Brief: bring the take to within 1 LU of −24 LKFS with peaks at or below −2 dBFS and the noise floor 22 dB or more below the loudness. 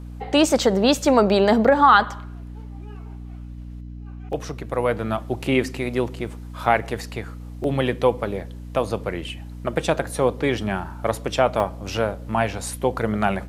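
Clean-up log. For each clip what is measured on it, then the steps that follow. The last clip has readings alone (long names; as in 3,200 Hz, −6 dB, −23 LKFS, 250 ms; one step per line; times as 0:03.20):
number of dropouts 5; longest dropout 1.2 ms; mains hum 60 Hz; hum harmonics up to 300 Hz; level of the hum −33 dBFS; integrated loudness −22.0 LKFS; sample peak −2.5 dBFS; target loudness −24.0 LKFS
→ repair the gap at 0:04.33/0:06.65/0:07.64/0:08.40/0:11.60, 1.2 ms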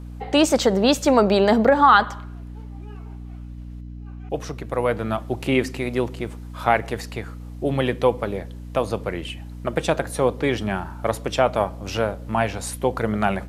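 number of dropouts 0; mains hum 60 Hz; hum harmonics up to 300 Hz; level of the hum −33 dBFS
→ hum removal 60 Hz, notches 5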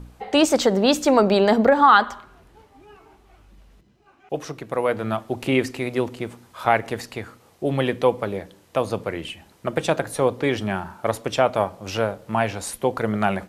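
mains hum none found; integrated loudness −22.0 LKFS; sample peak −2.5 dBFS; target loudness −24.0 LKFS
→ level −2 dB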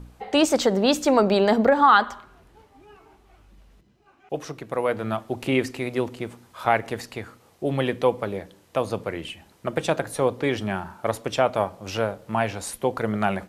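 integrated loudness −24.0 LKFS; sample peak −4.5 dBFS; background noise floor −58 dBFS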